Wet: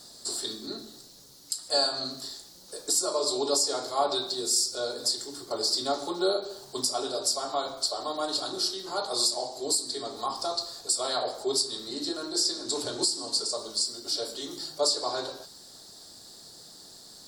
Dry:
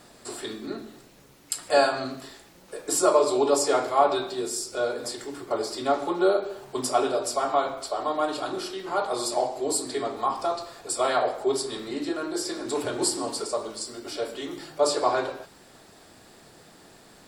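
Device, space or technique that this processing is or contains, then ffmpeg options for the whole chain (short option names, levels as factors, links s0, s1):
over-bright horn tweeter: -filter_complex "[0:a]highshelf=f=3300:t=q:w=3:g=10,alimiter=limit=0.355:level=0:latency=1:release=437,asettb=1/sr,asplit=3[s0][s1][s2];[s0]atrim=end=12.294[s3];[s1]atrim=start=12.29:end=13.54,asetpts=PTS-STARTPTS,afade=t=in:d=0.004:c=qsin,afade=t=out:st=1.246:d=0.004:c=qsin,lowpass=10000[s4];[s2]atrim=start=13.536[s5];[s3][s4]acrossfade=d=0.004:c1=hsin:c2=qsin[s6];[s6][s5]acrossfade=d=0.004:c1=qsin:c2=hsin,volume=0.562"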